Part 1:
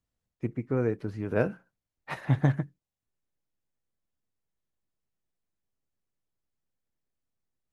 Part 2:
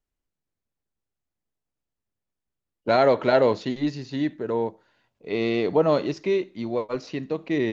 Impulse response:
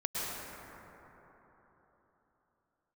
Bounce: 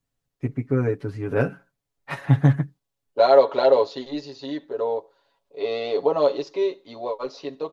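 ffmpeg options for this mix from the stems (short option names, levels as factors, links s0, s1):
-filter_complex "[0:a]volume=1.33,asplit=2[s0][s1];[1:a]equalizer=f=125:t=o:w=1:g=-10,equalizer=f=250:t=o:w=1:g=-4,equalizer=f=500:t=o:w=1:g=10,equalizer=f=1000:t=o:w=1:g=8,equalizer=f=2000:t=o:w=1:g=-5,equalizer=f=4000:t=o:w=1:g=9,adelay=300,volume=1.19[s2];[s1]apad=whole_len=353880[s3];[s2][s3]sidechaingate=range=0.316:threshold=0.00501:ratio=16:detection=peak[s4];[s0][s4]amix=inputs=2:normalize=0,aecho=1:1:7.2:0.85"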